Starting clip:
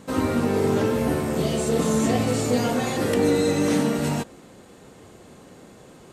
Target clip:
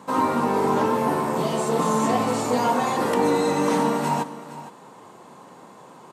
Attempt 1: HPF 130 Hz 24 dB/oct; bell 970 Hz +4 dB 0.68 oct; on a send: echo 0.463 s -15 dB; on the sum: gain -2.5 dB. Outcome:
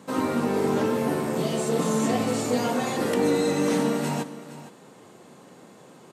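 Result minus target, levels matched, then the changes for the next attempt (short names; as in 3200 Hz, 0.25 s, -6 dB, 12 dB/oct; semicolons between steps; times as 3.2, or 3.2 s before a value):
1000 Hz band -6.0 dB
change: bell 970 Hz +16 dB 0.68 oct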